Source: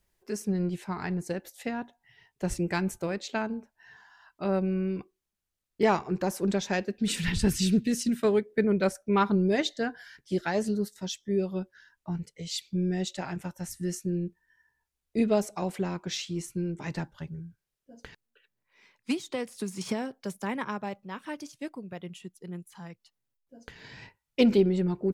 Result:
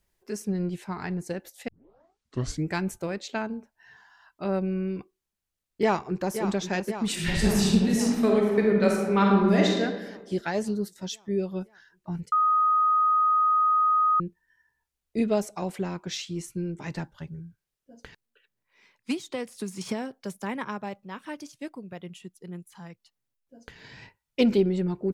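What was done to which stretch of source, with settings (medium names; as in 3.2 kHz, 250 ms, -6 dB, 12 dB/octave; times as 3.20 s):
1.68 s: tape start 1.05 s
5.81–6.38 s: echo throw 530 ms, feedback 70%, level -9 dB
7.13–9.81 s: reverb throw, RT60 1.3 s, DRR -1.5 dB
12.32–14.20 s: bleep 1.25 kHz -18.5 dBFS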